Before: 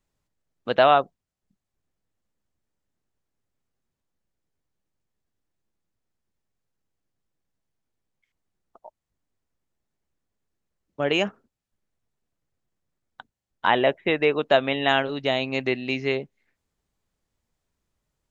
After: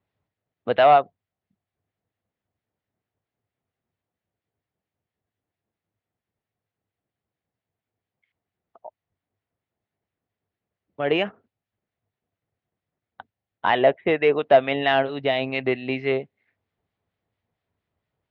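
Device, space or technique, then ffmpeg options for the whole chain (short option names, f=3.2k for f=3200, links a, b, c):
guitar amplifier with harmonic tremolo: -filter_complex "[0:a]acrossover=split=1300[a][b];[a]aeval=exprs='val(0)*(1-0.5/2+0.5/2*cos(2*PI*4.4*n/s))':c=same[c];[b]aeval=exprs='val(0)*(1-0.5/2-0.5/2*cos(2*PI*4.4*n/s))':c=same[d];[c][d]amix=inputs=2:normalize=0,asoftclip=type=tanh:threshold=-12dB,highpass=83,equalizer=f=100:t=q:w=4:g=9,equalizer=f=450:t=q:w=4:g=3,equalizer=f=700:t=q:w=4:g=6,equalizer=f=2k:t=q:w=4:g=3,lowpass=f=3.7k:w=0.5412,lowpass=f=3.7k:w=1.3066,volume=2dB"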